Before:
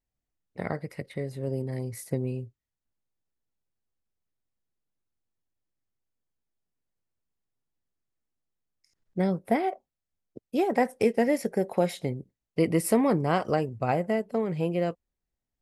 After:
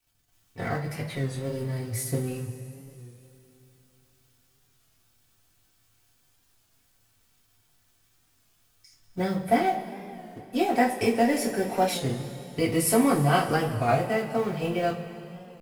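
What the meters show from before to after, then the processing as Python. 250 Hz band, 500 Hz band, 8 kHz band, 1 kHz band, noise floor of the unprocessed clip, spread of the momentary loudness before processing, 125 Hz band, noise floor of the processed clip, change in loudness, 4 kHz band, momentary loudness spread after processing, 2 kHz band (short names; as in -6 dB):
+1.0 dB, +0.5 dB, +8.0 dB, +4.5 dB, under -85 dBFS, 14 LU, +2.5 dB, -67 dBFS, +1.5 dB, +8.0 dB, 17 LU, +5.0 dB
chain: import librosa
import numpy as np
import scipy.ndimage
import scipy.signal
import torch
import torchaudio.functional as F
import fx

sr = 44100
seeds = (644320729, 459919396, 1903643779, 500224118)

y = fx.law_mismatch(x, sr, coded='mu')
y = fx.peak_eq(y, sr, hz=400.0, db=-7.5, octaves=2.2)
y = fx.notch(y, sr, hz=2100.0, q=11.0)
y = fx.rev_double_slope(y, sr, seeds[0], early_s=0.25, late_s=3.3, knee_db=-19, drr_db=-5.5)
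y = fx.record_warp(y, sr, rpm=33.33, depth_cents=100.0)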